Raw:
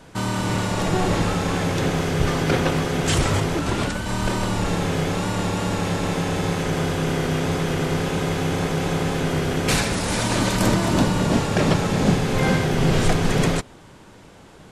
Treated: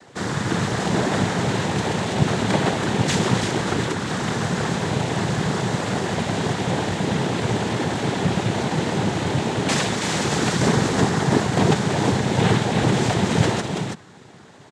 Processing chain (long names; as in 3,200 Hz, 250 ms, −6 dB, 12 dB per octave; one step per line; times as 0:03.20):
single-tap delay 330 ms −5.5 dB
cochlear-implant simulation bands 6